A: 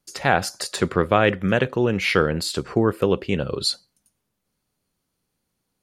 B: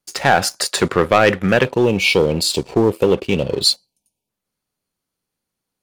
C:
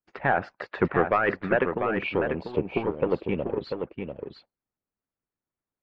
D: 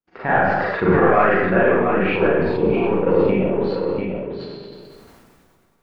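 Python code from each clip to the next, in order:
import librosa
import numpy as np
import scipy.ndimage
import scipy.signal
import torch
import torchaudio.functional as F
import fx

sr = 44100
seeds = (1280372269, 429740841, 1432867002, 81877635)

y1 = fx.spec_box(x, sr, start_s=1.65, length_s=2.64, low_hz=1000.0, high_hz=2200.0, gain_db=-28)
y1 = fx.leveller(y1, sr, passes=2)
y1 = fx.low_shelf(y1, sr, hz=280.0, db=-5.5)
y1 = y1 * librosa.db_to_amplitude(1.0)
y2 = scipy.signal.sosfilt(scipy.signal.butter(4, 2100.0, 'lowpass', fs=sr, output='sos'), y1)
y2 = fx.hpss(y2, sr, part='harmonic', gain_db=-18)
y2 = y2 + 10.0 ** (-6.5 / 20.0) * np.pad(y2, (int(693 * sr / 1000.0), 0))[:len(y2)]
y2 = y2 * librosa.db_to_amplitude(-5.5)
y3 = fx.high_shelf(y2, sr, hz=3300.0, db=-9.5)
y3 = fx.rev_schroeder(y3, sr, rt60_s=0.75, comb_ms=33, drr_db=-7.5)
y3 = fx.sustainer(y3, sr, db_per_s=24.0)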